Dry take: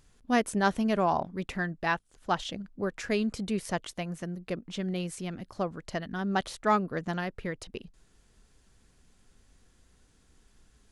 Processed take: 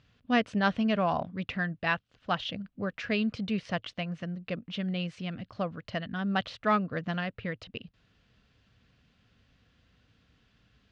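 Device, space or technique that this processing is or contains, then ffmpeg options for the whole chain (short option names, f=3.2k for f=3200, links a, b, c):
guitar cabinet: -af "highpass=75,equalizer=f=110:t=q:w=4:g=7,equalizer=f=370:t=q:w=4:g=-10,equalizer=f=880:t=q:w=4:g=-7,equalizer=f=2.8k:t=q:w=4:g=5,lowpass=f=4.4k:w=0.5412,lowpass=f=4.4k:w=1.3066,volume=1dB"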